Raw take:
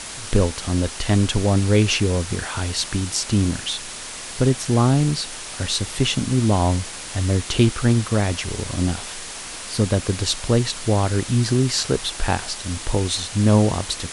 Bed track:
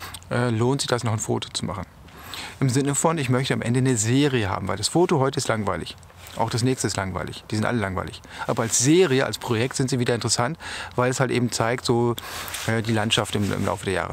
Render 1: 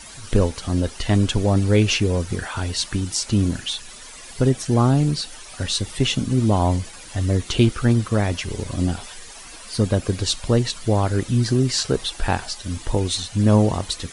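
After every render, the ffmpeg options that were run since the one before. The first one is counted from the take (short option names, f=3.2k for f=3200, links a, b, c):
-af "afftdn=nr=12:nf=-34"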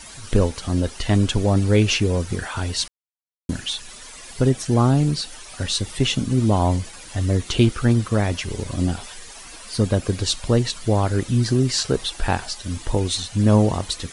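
-filter_complex "[0:a]asplit=3[a][b][c];[a]atrim=end=2.88,asetpts=PTS-STARTPTS,afade=t=out:st=2.876:d=0.004:c=hsin[d];[b]atrim=start=2.88:end=3.49,asetpts=PTS-STARTPTS,volume=0[e];[c]atrim=start=3.49,asetpts=PTS-STARTPTS,afade=t=in:d=0.004:c=hsin[f];[d][e][f]concat=n=3:v=0:a=1"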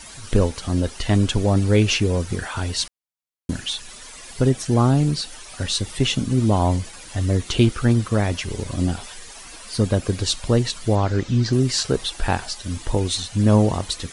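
-filter_complex "[0:a]asettb=1/sr,asplit=3[a][b][c];[a]atrim=end=10.954[d];[b]atrim=start=10.95:end=11.53,asetpts=PTS-STARTPTS,afade=t=in:d=0.004:c=qsin,afade=t=out:st=0.576:d=0.004:c=qsin,lowpass=f=6.5k:w=0.5412,lowpass=f=6.5k:w=1.3066[e];[c]atrim=start=11.526[f];[d][e]acrossfade=d=0.004:c1=hsin:c2=qsin[g];[g][f]acrossfade=d=0.004:c1=qsin:c2=hsin"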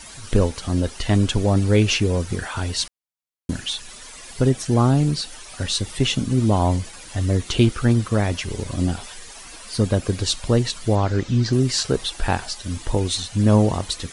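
-af anull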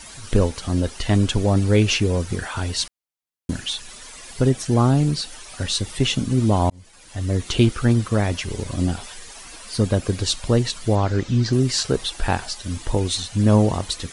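-filter_complex "[0:a]asplit=2[a][b];[a]atrim=end=6.7,asetpts=PTS-STARTPTS,afade=t=out:st=6.696:d=0.004:c=hsin[c];[b]atrim=start=6.7,asetpts=PTS-STARTPTS,afade=t=in:d=0.78[d];[c][d]concat=n=2:v=0:a=1"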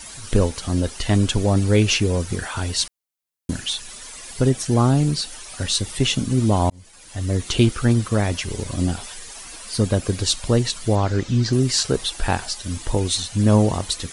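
-af "highshelf=f=6.7k:g=6"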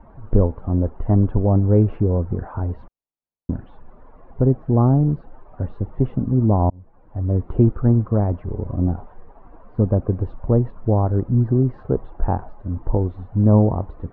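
-af "lowpass=f=1k:w=0.5412,lowpass=f=1k:w=1.3066,lowshelf=f=120:g=4.5"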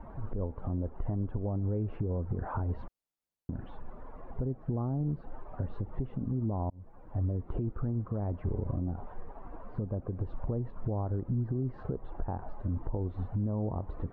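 -af "acompressor=threshold=-24dB:ratio=16,alimiter=limit=-23.5dB:level=0:latency=1:release=129"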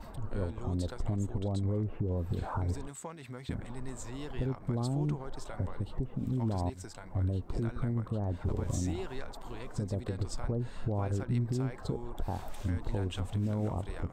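-filter_complex "[1:a]volume=-23dB[a];[0:a][a]amix=inputs=2:normalize=0"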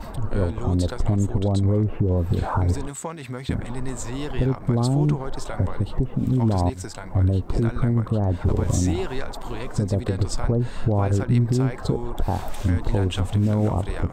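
-af "volume=11.5dB"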